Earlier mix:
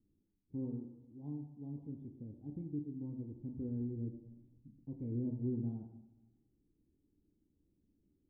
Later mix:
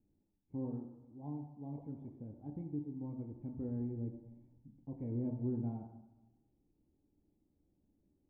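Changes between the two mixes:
background +8.5 dB; master: add high-order bell 1.2 kHz +11.5 dB 2.4 oct

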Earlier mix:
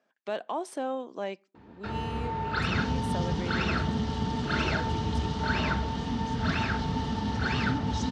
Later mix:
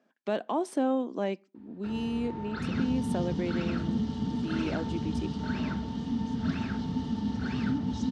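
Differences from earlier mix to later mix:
first sound -11.0 dB; second sound -7.5 dB; master: add peaking EQ 240 Hz +10.5 dB 1.4 oct

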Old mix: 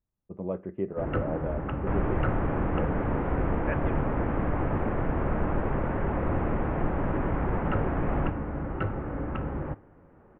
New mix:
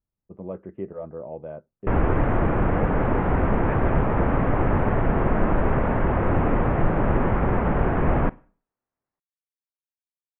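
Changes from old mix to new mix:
speech: send off; first sound: muted; second sound +8.0 dB

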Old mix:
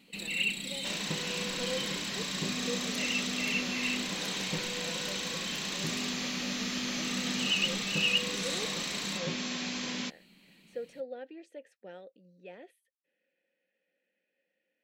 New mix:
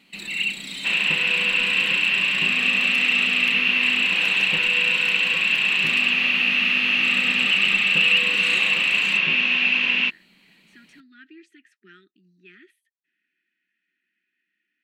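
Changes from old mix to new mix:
speech: add brick-wall FIR band-stop 400–1200 Hz; second sound: add resonant low-pass 2.7 kHz, resonance Q 15; master: add peaking EQ 1.7 kHz +7.5 dB 2.5 oct

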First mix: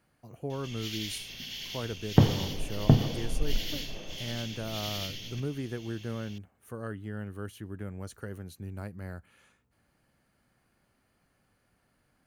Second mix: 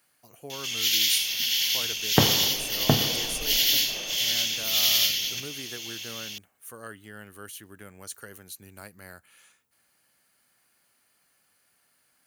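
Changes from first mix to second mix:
background +7.5 dB; master: add tilt EQ +4 dB/octave

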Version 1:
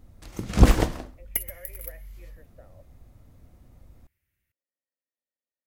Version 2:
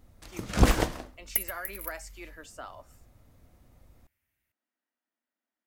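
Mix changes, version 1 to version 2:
speech: remove cascade formant filter e; master: add bass shelf 400 Hz -6.5 dB

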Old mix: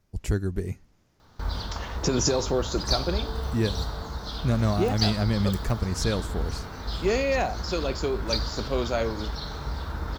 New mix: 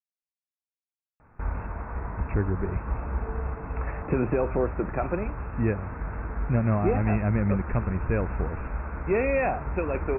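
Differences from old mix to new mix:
speech: entry +2.05 s; master: add brick-wall FIR low-pass 2.7 kHz

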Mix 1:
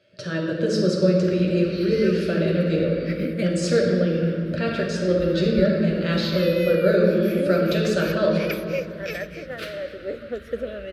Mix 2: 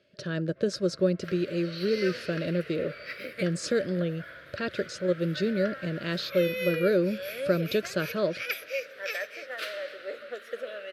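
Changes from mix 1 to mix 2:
second sound: add high-pass 720 Hz 12 dB/octave; reverb: off

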